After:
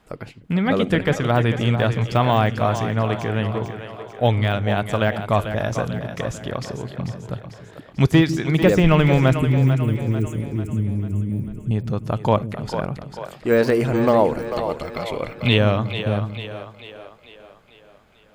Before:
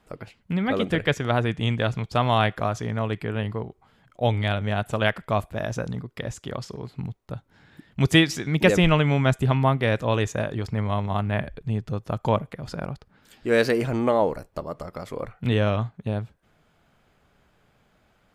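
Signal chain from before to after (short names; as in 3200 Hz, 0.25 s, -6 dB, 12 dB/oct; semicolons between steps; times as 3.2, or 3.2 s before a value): de-esser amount 85%; 9.39–11.71 elliptic band-stop 340–7900 Hz, stop band 40 dB; 14.57–15.58 spectral gain 2000–4400 Hz +11 dB; split-band echo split 330 Hz, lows 0.15 s, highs 0.444 s, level -9 dB; gain +4.5 dB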